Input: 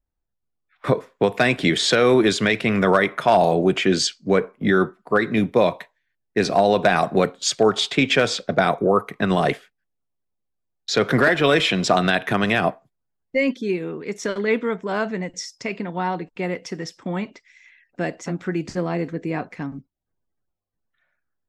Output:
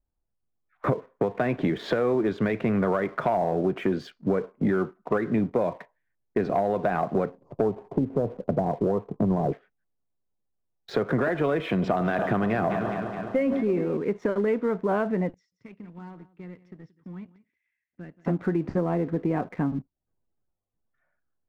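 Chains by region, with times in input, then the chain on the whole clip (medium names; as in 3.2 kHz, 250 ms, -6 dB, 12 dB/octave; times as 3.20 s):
7.30–9.52 s: elliptic low-pass 1 kHz + bass shelf 200 Hz +9 dB
11.61–13.97 s: echo whose repeats swap between lows and highs 105 ms, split 1.3 kHz, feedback 83%, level -14 dB + decay stretcher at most 57 dB/s
15.34–18.25 s: high-pass 48 Hz 24 dB/octave + amplifier tone stack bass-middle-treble 6-0-2 + delay 177 ms -14.5 dB
whole clip: low-pass 1.2 kHz 12 dB/octave; compression 6:1, threshold -27 dBFS; waveshaping leveller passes 1; trim +2 dB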